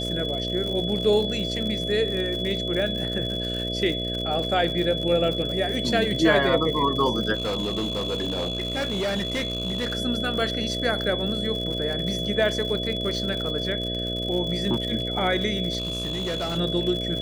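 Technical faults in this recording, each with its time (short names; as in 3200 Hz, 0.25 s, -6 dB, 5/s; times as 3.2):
buzz 60 Hz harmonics 11 -31 dBFS
crackle 97/s -30 dBFS
tone 3400 Hz -29 dBFS
7.34–9.95 clipped -22.5 dBFS
15.78–16.58 clipped -24 dBFS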